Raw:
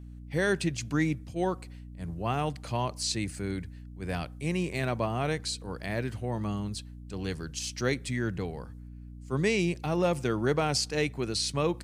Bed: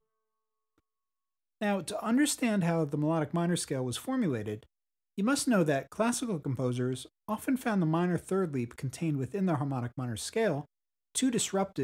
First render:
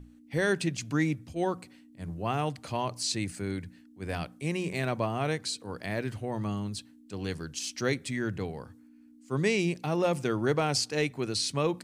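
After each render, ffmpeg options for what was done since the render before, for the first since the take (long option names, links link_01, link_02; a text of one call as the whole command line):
ffmpeg -i in.wav -af "bandreject=frequency=60:width_type=h:width=6,bandreject=frequency=120:width_type=h:width=6,bandreject=frequency=180:width_type=h:width=6" out.wav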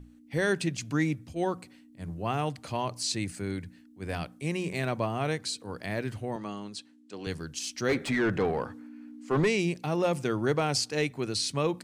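ffmpeg -i in.wav -filter_complex "[0:a]asettb=1/sr,asplit=3[link_01][link_02][link_03];[link_01]atrim=end=6.364[link_04];[link_02]atrim=start=6.36:end=7.27,asetpts=PTS-STARTPTS,afade=type=in:duration=0.004:curve=qsin,afade=type=out:start_time=0.906:duration=0.004:curve=qsin,highpass=270,lowpass=7800[link_05];[link_03]atrim=start=7.266[link_06];[link_04][link_05]acrossfade=duration=0.004:curve1=hsin:curve2=qsin[link_07];[link_07][link_06]acrossfade=duration=0.004:curve1=qsin:curve2=hsin,asplit=3[link_08][link_09][link_10];[link_08]afade=type=out:start_time=7.88:duration=0.02[link_11];[link_09]asplit=2[link_12][link_13];[link_13]highpass=frequency=720:poles=1,volume=25dB,asoftclip=type=tanh:threshold=-15dB[link_14];[link_12][link_14]amix=inputs=2:normalize=0,lowpass=frequency=1100:poles=1,volume=-6dB,afade=type=in:start_time=7.88:duration=0.02,afade=type=out:start_time=9.46:duration=0.02[link_15];[link_10]afade=type=in:start_time=9.46:duration=0.02[link_16];[link_11][link_15][link_16]amix=inputs=3:normalize=0" out.wav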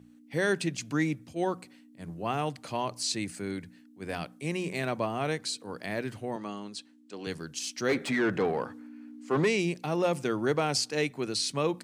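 ffmpeg -i in.wav -af "highpass=150" out.wav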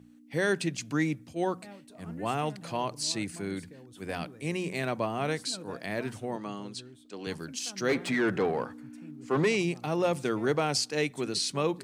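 ffmpeg -i in.wav -i bed.wav -filter_complex "[1:a]volume=-18.5dB[link_01];[0:a][link_01]amix=inputs=2:normalize=0" out.wav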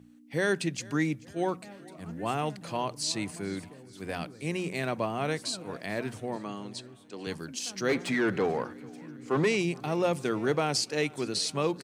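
ffmpeg -i in.wav -af "aecho=1:1:436|872|1308|1744:0.0708|0.0418|0.0246|0.0145" out.wav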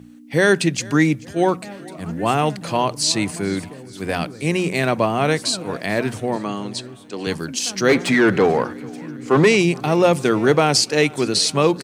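ffmpeg -i in.wav -af "volume=12dB" out.wav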